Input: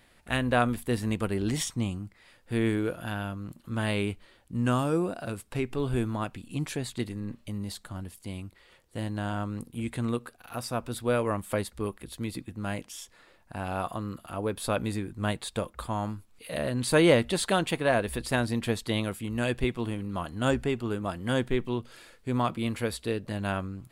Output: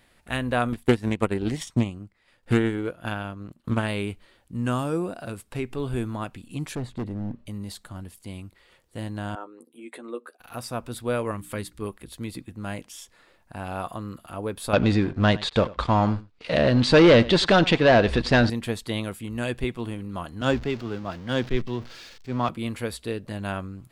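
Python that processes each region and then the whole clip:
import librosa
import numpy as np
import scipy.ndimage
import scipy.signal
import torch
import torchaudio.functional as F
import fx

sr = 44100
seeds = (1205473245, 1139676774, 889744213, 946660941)

y = fx.chain(x, sr, fx.high_shelf(hz=8200.0, db=-7.0),
    fx.transient(attack_db=12, sustain_db=-8),
    fx.doppler_dist(depth_ms=0.25), at=(0.72, 3.88))
y = fx.chain(y, sr, fx.lowpass(hz=3300.0, slope=6),
    fx.tilt_shelf(db=6.5, hz=1300.0),
    fx.clip_hard(threshold_db=-26.5), at=(6.75, 7.46))
y = fx.chain(y, sr, fx.envelope_sharpen(power=1.5),
    fx.highpass(hz=350.0, slope=24),
    fx.doubler(ms=12.0, db=-6), at=(9.35, 10.4))
y = fx.chain(y, sr, fx.peak_eq(hz=680.0, db=-9.0, octaves=1.0),
    fx.hum_notches(base_hz=60, count=6), at=(11.31, 11.82))
y = fx.chain(y, sr, fx.leveller(passes=3),
    fx.lowpass(hz=5300.0, slope=24),
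    fx.echo_single(ms=93, db=-20.0), at=(14.73, 18.5))
y = fx.chain(y, sr, fx.zero_step(step_db=-36.0),
    fx.high_shelf_res(hz=7200.0, db=-11.5, q=1.5),
    fx.band_widen(depth_pct=70), at=(20.41, 22.49))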